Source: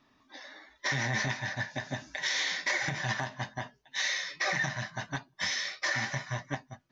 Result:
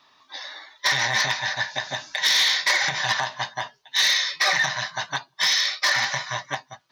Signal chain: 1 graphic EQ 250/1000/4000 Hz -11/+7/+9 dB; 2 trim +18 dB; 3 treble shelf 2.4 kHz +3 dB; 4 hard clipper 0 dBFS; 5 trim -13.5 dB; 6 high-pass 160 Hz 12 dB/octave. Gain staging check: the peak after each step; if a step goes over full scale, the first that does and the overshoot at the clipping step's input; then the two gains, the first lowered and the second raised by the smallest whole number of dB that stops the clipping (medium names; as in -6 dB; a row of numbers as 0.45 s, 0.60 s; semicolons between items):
-14.0 dBFS, +4.0 dBFS, +6.0 dBFS, 0.0 dBFS, -13.5 dBFS, -11.5 dBFS; step 2, 6.0 dB; step 2 +12 dB, step 5 -7.5 dB